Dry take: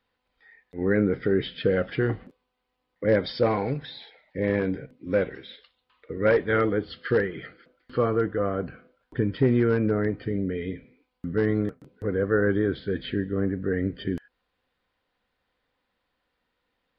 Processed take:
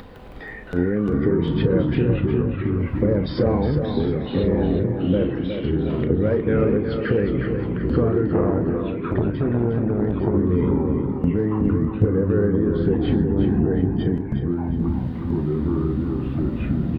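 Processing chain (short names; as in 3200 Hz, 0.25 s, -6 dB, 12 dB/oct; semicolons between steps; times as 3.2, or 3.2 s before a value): tilt shelf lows +9.5 dB, about 860 Hz; upward compressor, threshold -31 dBFS; limiter -12 dBFS, peak gain reduction 9.5 dB; compressor, threshold -26 dBFS, peak gain reduction 10 dB; doubler 34 ms -11.5 dB; echoes that change speed 0.16 s, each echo -4 st, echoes 3; tape echo 0.362 s, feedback 47%, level -5.5 dB, low-pass 3500 Hz; 8.27–10.35 core saturation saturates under 360 Hz; gain +8 dB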